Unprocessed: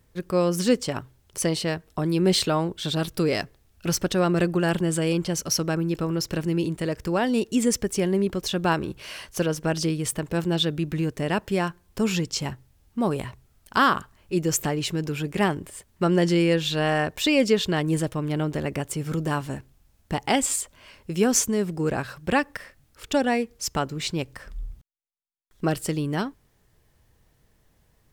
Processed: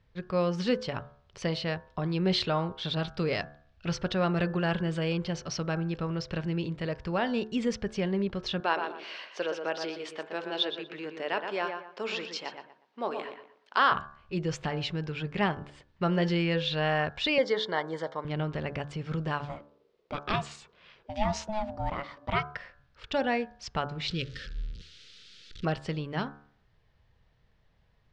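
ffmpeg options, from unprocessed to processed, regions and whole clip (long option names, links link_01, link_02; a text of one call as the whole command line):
ffmpeg -i in.wav -filter_complex "[0:a]asettb=1/sr,asplit=3[link_01][link_02][link_03];[link_01]atrim=end=8.604[link_04];[link_02]atrim=start=8.6:end=13.92,asetpts=PTS-STARTPTS,afade=type=in:duration=0.004:curve=qsin,afade=type=out:start_time=5.316:duration=0.004:curve=qsin,highpass=frequency=320:width=0.5412,highpass=frequency=320:width=1.3066,asplit=2[link_05][link_06];[link_06]adelay=120,lowpass=frequency=2600:poles=1,volume=-6dB,asplit=2[link_07][link_08];[link_08]adelay=120,lowpass=frequency=2600:poles=1,volume=0.29,asplit=2[link_09][link_10];[link_10]adelay=120,lowpass=frequency=2600:poles=1,volume=0.29,asplit=2[link_11][link_12];[link_12]adelay=120,lowpass=frequency=2600:poles=1,volume=0.29[link_13];[link_05][link_07][link_09][link_11][link_13]amix=inputs=5:normalize=0,atrim=end_sample=234612[link_14];[link_03]atrim=start=13.916[link_15];[link_04][link_14]acrossfade=duration=0.004:curve1=hsin:curve2=qsin[link_16];[link_16][link_15]acrossfade=duration=0.004:curve1=qsin:curve2=hsin,asettb=1/sr,asplit=3[link_17][link_18][link_19];[link_17]atrim=end=17.384[link_20];[link_18]atrim=start=17.38:end=18.25,asetpts=PTS-STARTPTS,afade=type=in:duration=0.004:curve=qsin,afade=type=out:start_time=0.866:duration=0.004:curve=qsin,asuperstop=centerf=2600:order=4:qfactor=2.6,highpass=360,equalizer=frequency=500:width_type=q:width=4:gain=4,equalizer=frequency=930:width_type=q:width=4:gain=7,equalizer=frequency=2200:width_type=q:width=4:gain=4,lowpass=frequency=8900:width=0.5412,lowpass=frequency=8900:width=1.3066[link_21];[link_19]atrim=start=18.246[link_22];[link_20][link_21]acrossfade=duration=0.004:curve1=hsin:curve2=qsin[link_23];[link_23][link_22]acrossfade=duration=0.004:curve1=qsin:curve2=hsin,asettb=1/sr,asplit=3[link_24][link_25][link_26];[link_24]atrim=end=19.454[link_27];[link_25]atrim=start=19.45:end=22.55,asetpts=PTS-STARTPTS,afade=type=in:duration=0.004:curve=qsin,afade=type=out:start_time=3.096:duration=0.004:curve=qsin,bandreject=frequency=1200:width=7.3,aeval=exprs='val(0)*sin(2*PI*430*n/s)':channel_layout=same[link_28];[link_26]atrim=start=22.546[link_29];[link_27][link_28]acrossfade=duration=0.004:curve1=hsin:curve2=qsin[link_30];[link_30][link_29]acrossfade=duration=0.004:curve1=qsin:curve2=hsin,asettb=1/sr,asplit=3[link_31][link_32][link_33];[link_31]atrim=end=24.084[link_34];[link_32]atrim=start=24.08:end=25.65,asetpts=PTS-STARTPTS,afade=type=in:duration=0.004:curve=qsin,afade=type=out:start_time=1.566:duration=0.004:curve=qsin,aeval=exprs='val(0)+0.5*0.0158*sgn(val(0))':channel_layout=same,asuperstop=centerf=830:order=8:qfactor=0.99,highshelf=frequency=2700:width_type=q:width=1.5:gain=6.5[link_35];[link_33]atrim=start=25.646[link_36];[link_34][link_35]acrossfade=duration=0.004:curve1=hsin:curve2=qsin[link_37];[link_37][link_36]acrossfade=duration=0.004:curve1=qsin:curve2=hsin,lowpass=frequency=4400:width=0.5412,lowpass=frequency=4400:width=1.3066,equalizer=frequency=310:width_type=o:width=0.83:gain=-7.5,bandreject=frequency=72.43:width_type=h:width=4,bandreject=frequency=144.86:width_type=h:width=4,bandreject=frequency=217.29:width_type=h:width=4,bandreject=frequency=289.72:width_type=h:width=4,bandreject=frequency=362.15:width_type=h:width=4,bandreject=frequency=434.58:width_type=h:width=4,bandreject=frequency=507.01:width_type=h:width=4,bandreject=frequency=579.44:width_type=h:width=4,bandreject=frequency=651.87:width_type=h:width=4,bandreject=frequency=724.3:width_type=h:width=4,bandreject=frequency=796.73:width_type=h:width=4,bandreject=frequency=869.16:width_type=h:width=4,bandreject=frequency=941.59:width_type=h:width=4,bandreject=frequency=1014.02:width_type=h:width=4,bandreject=frequency=1086.45:width_type=h:width=4,bandreject=frequency=1158.88:width_type=h:width=4,bandreject=frequency=1231.31:width_type=h:width=4,bandreject=frequency=1303.74:width_type=h:width=4,bandreject=frequency=1376.17:width_type=h:width=4,bandreject=frequency=1448.6:width_type=h:width=4,bandreject=frequency=1521.03:width_type=h:width=4,bandreject=frequency=1593.46:width_type=h:width=4,bandreject=frequency=1665.89:width_type=h:width=4,bandreject=frequency=1738.32:width_type=h:width=4,volume=-3dB" out.wav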